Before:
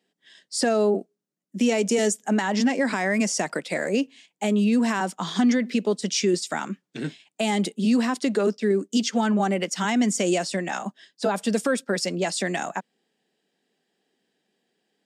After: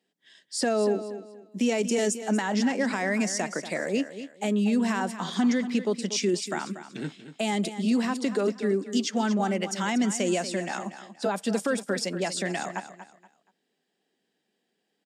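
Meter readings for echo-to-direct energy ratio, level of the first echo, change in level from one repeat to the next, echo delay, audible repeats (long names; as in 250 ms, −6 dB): −11.5 dB, −12.0 dB, −11.0 dB, 237 ms, 3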